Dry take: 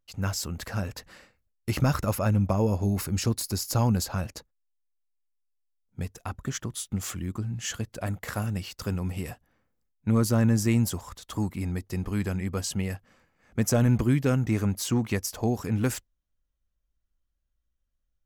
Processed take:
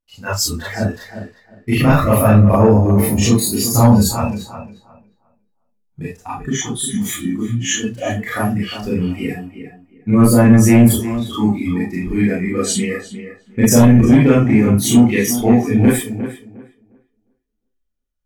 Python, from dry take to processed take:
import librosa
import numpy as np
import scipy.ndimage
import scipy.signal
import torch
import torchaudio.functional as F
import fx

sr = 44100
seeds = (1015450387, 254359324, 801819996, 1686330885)

p1 = fx.rev_schroeder(x, sr, rt60_s=0.34, comb_ms=26, drr_db=-6.5)
p2 = fx.noise_reduce_blind(p1, sr, reduce_db=16)
p3 = fx.fold_sine(p2, sr, drive_db=5, ceiling_db=-2.5)
p4 = p3 + fx.echo_tape(p3, sr, ms=356, feedback_pct=23, wet_db=-9, lp_hz=1900.0, drive_db=2.0, wow_cents=5, dry=0)
y = p4 * 10.0 ** (-1.0 / 20.0)